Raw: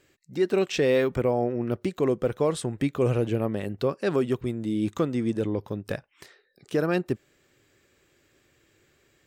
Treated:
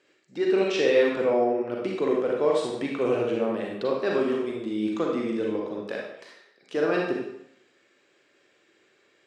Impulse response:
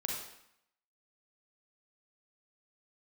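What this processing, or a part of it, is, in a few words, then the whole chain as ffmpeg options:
supermarket ceiling speaker: -filter_complex "[0:a]asettb=1/sr,asplit=3[s0][s1][s2];[s0]atrim=end=5.854[s3];[s1]atrim=start=5.85:end=6.77,asetpts=PTS-STARTPTS,afade=t=in:d=0.004:c=qsin,afade=t=out:st=0.916:d=0.004:c=qsin,highpass=f=240:p=1[s4];[s2]atrim=start=6.766[s5];[s3][s4]acrossfade=d=0.004:c1=hsin:c2=qsin[s6];[s6][s5]acrossfade=d=0.004:c1=qsin:c2=hsin,highpass=300,lowpass=5300[s7];[1:a]atrim=start_sample=2205[s8];[s7][s8]afir=irnorm=-1:irlink=0"

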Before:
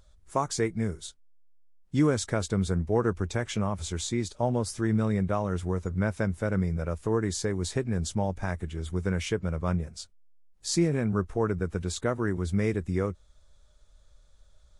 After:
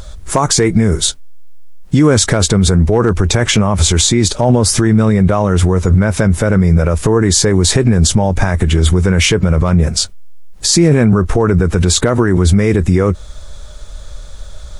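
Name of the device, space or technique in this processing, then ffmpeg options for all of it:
loud club master: -af "acompressor=threshold=0.0282:ratio=1.5,asoftclip=type=hard:threshold=0.126,alimiter=level_in=29.9:limit=0.891:release=50:level=0:latency=1,volume=0.891"

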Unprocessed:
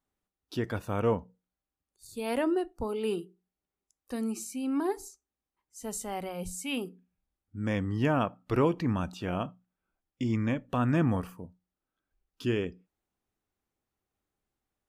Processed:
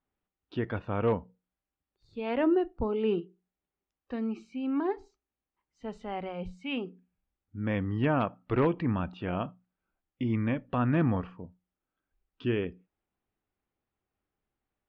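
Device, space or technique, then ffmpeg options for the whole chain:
synthesiser wavefolder: -filter_complex "[0:a]asplit=3[s0][s1][s2];[s0]afade=t=out:st=2.39:d=0.02[s3];[s1]lowshelf=f=420:g=5.5,afade=t=in:st=2.39:d=0.02,afade=t=out:st=3.19:d=0.02[s4];[s2]afade=t=in:st=3.19:d=0.02[s5];[s3][s4][s5]amix=inputs=3:normalize=0,aeval=exprs='0.133*(abs(mod(val(0)/0.133+3,4)-2)-1)':c=same,lowpass=f=3200:w=0.5412,lowpass=f=3200:w=1.3066"

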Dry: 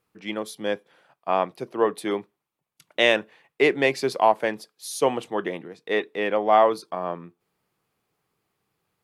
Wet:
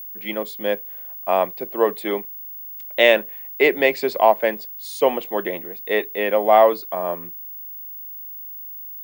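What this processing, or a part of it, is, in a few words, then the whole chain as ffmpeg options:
old television with a line whistle: -af "highpass=f=180:w=0.5412,highpass=f=180:w=1.3066,equalizer=f=290:t=q:w=4:g=-3,equalizer=f=590:t=q:w=4:g=5,equalizer=f=1300:t=q:w=4:g=-4,equalizer=f=2100:t=q:w=4:g=3,equalizer=f=5900:t=q:w=4:g=-8,lowpass=f=8200:w=0.5412,lowpass=f=8200:w=1.3066,aeval=exprs='val(0)+0.0178*sin(2*PI*15625*n/s)':c=same,volume=1.33"

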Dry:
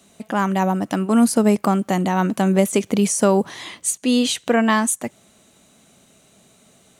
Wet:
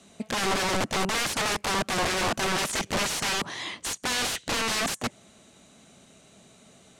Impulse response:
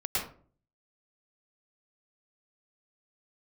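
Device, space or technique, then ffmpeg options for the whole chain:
overflowing digital effects unit: -af "aeval=exprs='(mod(11.2*val(0)+1,2)-1)/11.2':c=same,lowpass=8200"

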